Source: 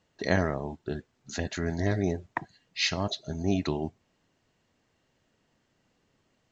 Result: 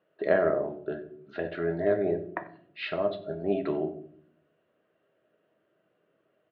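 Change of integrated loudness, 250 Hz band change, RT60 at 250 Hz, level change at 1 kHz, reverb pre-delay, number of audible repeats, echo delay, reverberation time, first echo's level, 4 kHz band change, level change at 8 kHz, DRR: +1.0 dB, -2.5 dB, 0.95 s, -0.5 dB, 6 ms, 1, 93 ms, 0.60 s, -19.0 dB, -12.0 dB, n/a, 6.0 dB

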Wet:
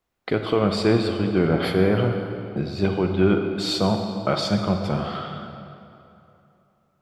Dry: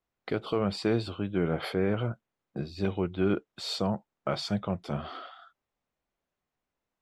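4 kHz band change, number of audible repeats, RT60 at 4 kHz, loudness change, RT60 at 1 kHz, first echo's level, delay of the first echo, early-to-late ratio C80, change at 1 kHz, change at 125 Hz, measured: +8.5 dB, none, 1.9 s, +8.5 dB, 2.9 s, none, none, 6.0 dB, +9.0 dB, +9.0 dB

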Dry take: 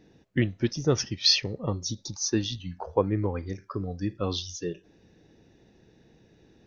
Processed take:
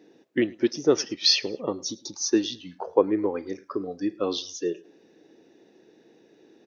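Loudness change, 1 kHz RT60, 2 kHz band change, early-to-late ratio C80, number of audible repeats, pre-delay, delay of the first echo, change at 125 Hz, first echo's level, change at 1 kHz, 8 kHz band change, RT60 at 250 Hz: +2.0 dB, none, +1.0 dB, none, 2, none, 0.106 s, -14.0 dB, -24.0 dB, +2.0 dB, n/a, none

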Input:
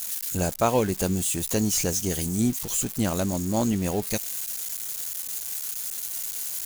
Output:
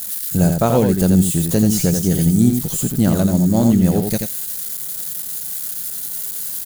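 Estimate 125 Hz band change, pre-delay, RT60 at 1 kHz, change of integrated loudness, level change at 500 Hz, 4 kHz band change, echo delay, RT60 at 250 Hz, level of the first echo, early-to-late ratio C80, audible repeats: +13.0 dB, none, none, +9.0 dB, +7.0 dB, +2.5 dB, 85 ms, none, -5.5 dB, none, 1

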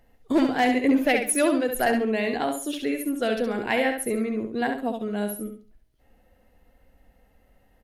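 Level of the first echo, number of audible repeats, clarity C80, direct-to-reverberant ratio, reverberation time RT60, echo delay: -6.0 dB, 3, none, none, none, 68 ms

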